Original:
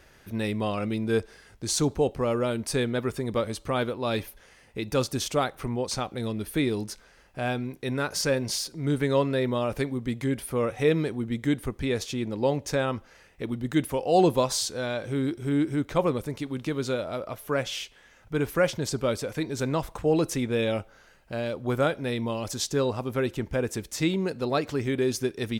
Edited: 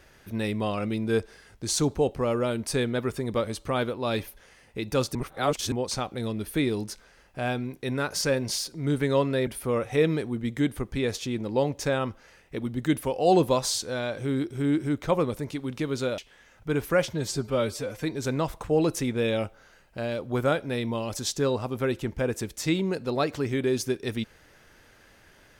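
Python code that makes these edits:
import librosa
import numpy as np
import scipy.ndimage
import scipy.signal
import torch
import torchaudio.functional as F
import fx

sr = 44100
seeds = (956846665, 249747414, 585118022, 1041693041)

y = fx.edit(x, sr, fx.reverse_span(start_s=5.15, length_s=0.57),
    fx.cut(start_s=9.47, length_s=0.87),
    fx.cut(start_s=17.05, length_s=0.78),
    fx.stretch_span(start_s=18.76, length_s=0.61, factor=1.5), tone=tone)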